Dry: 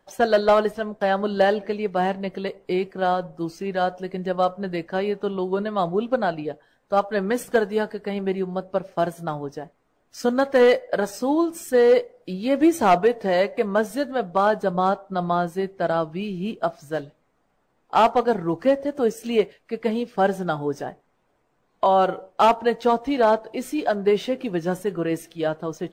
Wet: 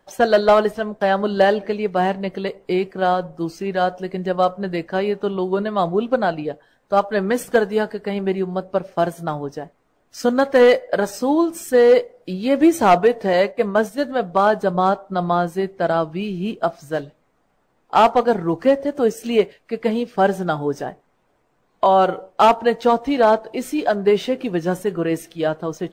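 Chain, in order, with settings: 13.33–14.01 gate -26 dBFS, range -8 dB; gain +3.5 dB

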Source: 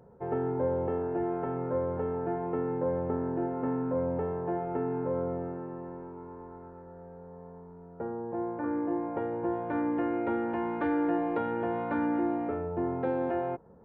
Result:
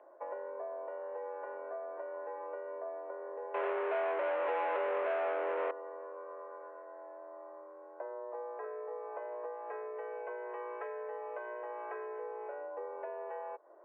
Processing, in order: compressor 6:1, threshold -39 dBFS, peak gain reduction 13.5 dB; 3.54–5.71 sample leveller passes 5; mistuned SSB +140 Hz 260–2600 Hz

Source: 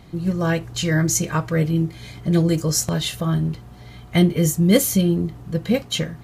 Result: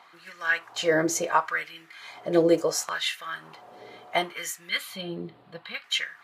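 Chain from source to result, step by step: high shelf 4500 Hz -11.5 dB; LFO high-pass sine 0.71 Hz 450–1900 Hz; 4.69–5.84 EQ curve 180 Hz 0 dB, 440 Hz -12 dB, 4200 Hz +1 dB, 6000 Hz -18 dB, 8600 Hz -11 dB

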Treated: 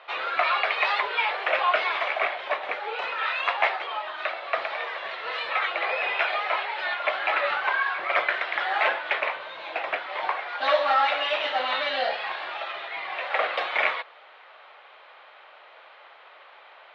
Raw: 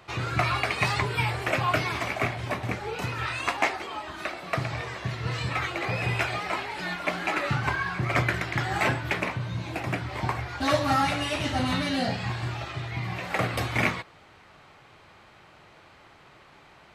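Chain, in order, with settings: Chebyshev band-pass 530–3600 Hz, order 3; in parallel at -2 dB: limiter -20 dBFS, peak gain reduction 9.5 dB

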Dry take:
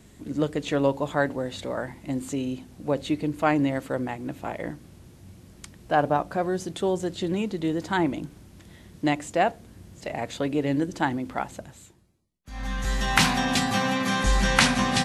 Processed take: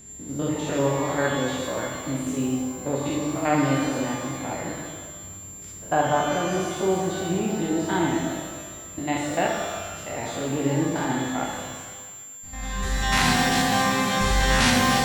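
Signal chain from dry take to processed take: stepped spectrum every 0.1 s; whine 7300 Hz -46 dBFS; shimmer reverb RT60 1.5 s, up +12 st, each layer -8 dB, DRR -0.5 dB

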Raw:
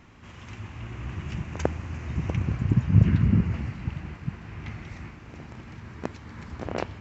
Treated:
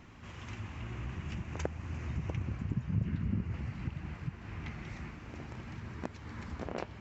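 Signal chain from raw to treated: compressor 2:1, threshold -36 dBFS, peak gain reduction 13.5 dB; flange 0.51 Hz, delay 0.2 ms, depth 5.6 ms, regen -72%; gain +2.5 dB

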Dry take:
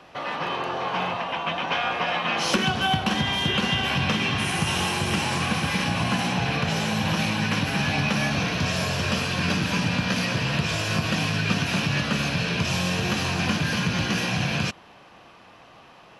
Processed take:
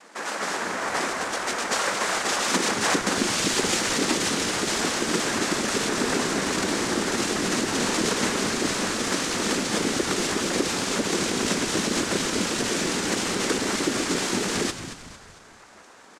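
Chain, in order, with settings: noise vocoder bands 3; brick-wall FIR high-pass 170 Hz; frequency-shifting echo 0.226 s, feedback 45%, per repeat -87 Hz, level -11 dB

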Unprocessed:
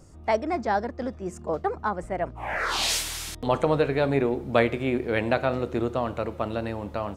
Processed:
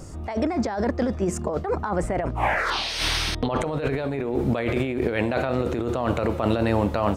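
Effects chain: limiter -15 dBFS, peak gain reduction 9.5 dB; negative-ratio compressor -32 dBFS, ratio -1; 2.7–3.61 polynomial smoothing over 15 samples; gain +8 dB

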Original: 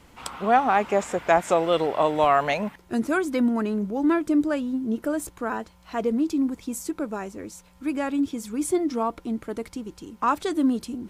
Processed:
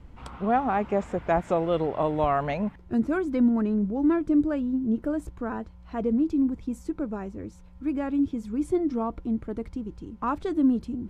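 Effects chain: RIAA curve playback; gain -6 dB

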